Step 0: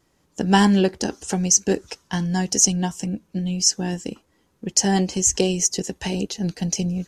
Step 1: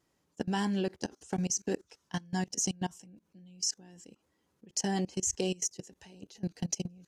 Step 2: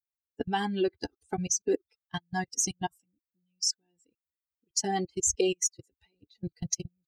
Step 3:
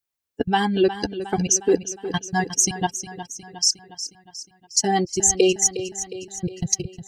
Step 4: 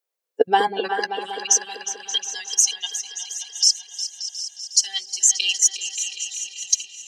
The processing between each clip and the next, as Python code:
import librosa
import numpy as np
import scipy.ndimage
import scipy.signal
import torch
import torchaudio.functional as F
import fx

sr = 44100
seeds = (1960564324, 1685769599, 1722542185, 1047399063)

y1 = fx.highpass(x, sr, hz=80.0, slope=6)
y1 = fx.level_steps(y1, sr, step_db=23)
y1 = y1 * librosa.db_to_amplitude(-7.0)
y2 = fx.bin_expand(y1, sr, power=2.0)
y2 = y2 + 0.56 * np.pad(y2, (int(2.5 * sr / 1000.0), 0))[:len(y2)]
y2 = y2 * librosa.db_to_amplitude(6.5)
y3 = fx.echo_feedback(y2, sr, ms=360, feedback_pct=56, wet_db=-12.0)
y3 = y3 * librosa.db_to_amplitude(9.0)
y4 = fx.filter_sweep_highpass(y3, sr, from_hz=480.0, to_hz=3300.0, start_s=0.6, end_s=1.24, q=3.7)
y4 = fx.echo_opening(y4, sr, ms=193, hz=400, octaves=2, feedback_pct=70, wet_db=-6)